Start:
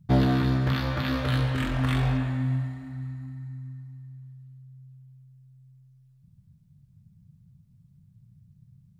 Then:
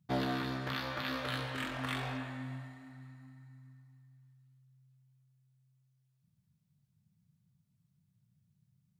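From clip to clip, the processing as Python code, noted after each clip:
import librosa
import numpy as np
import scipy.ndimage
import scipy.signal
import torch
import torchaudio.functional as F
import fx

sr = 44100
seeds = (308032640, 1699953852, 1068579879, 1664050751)

y = fx.highpass(x, sr, hz=570.0, slope=6)
y = F.gain(torch.from_numpy(y), -4.5).numpy()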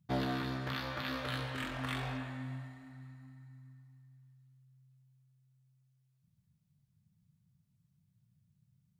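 y = fx.low_shelf(x, sr, hz=77.0, db=9.5)
y = F.gain(torch.from_numpy(y), -1.5).numpy()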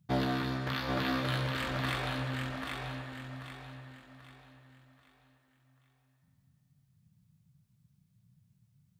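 y = fx.echo_feedback(x, sr, ms=786, feedback_pct=36, wet_db=-4.0)
y = F.gain(torch.from_numpy(y), 3.5).numpy()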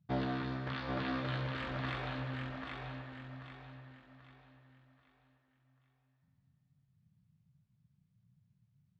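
y = fx.air_absorb(x, sr, metres=180.0)
y = F.gain(torch.from_numpy(y), -4.0).numpy()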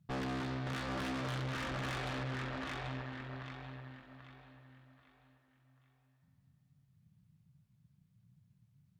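y = fx.tube_stage(x, sr, drive_db=44.0, bias=0.75)
y = F.gain(torch.from_numpy(y), 8.0).numpy()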